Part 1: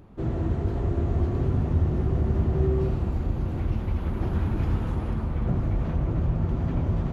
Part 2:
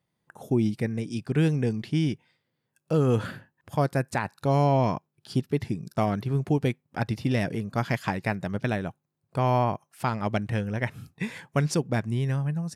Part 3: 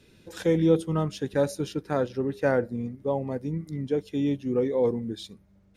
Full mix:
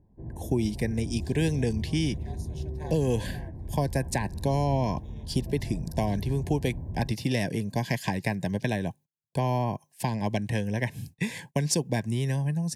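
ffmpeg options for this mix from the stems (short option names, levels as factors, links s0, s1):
-filter_complex "[0:a]lowpass=f=1500:w=0.5412,lowpass=f=1500:w=1.3066,volume=0.15[s0];[1:a]agate=range=0.0355:threshold=0.00316:ratio=16:detection=peak,acrossover=split=180|360[s1][s2][s3];[s1]acompressor=threshold=0.0112:ratio=4[s4];[s2]acompressor=threshold=0.0141:ratio=4[s5];[s3]acompressor=threshold=0.0398:ratio=4[s6];[s4][s5][s6]amix=inputs=3:normalize=0,volume=1.12,asplit=2[s7][s8];[2:a]highpass=600,aeval=exprs='val(0)*sin(2*PI*160*n/s)':c=same,adelay=900,volume=0.422[s9];[s8]apad=whole_len=294124[s10];[s9][s10]sidechaincompress=threshold=0.00794:ratio=3:attack=16:release=720[s11];[s0][s7][s11]amix=inputs=3:normalize=0,asuperstop=centerf=1300:order=12:qfactor=2.7,bass=f=250:g=6,treble=f=4000:g=8"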